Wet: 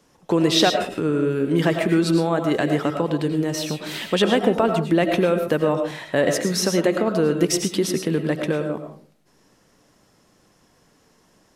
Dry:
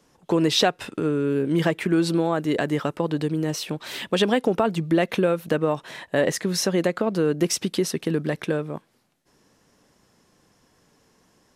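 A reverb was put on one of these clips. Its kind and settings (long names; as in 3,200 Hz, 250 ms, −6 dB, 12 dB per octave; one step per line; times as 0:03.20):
comb and all-pass reverb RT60 0.44 s, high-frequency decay 0.35×, pre-delay 65 ms, DRR 5 dB
level +1.5 dB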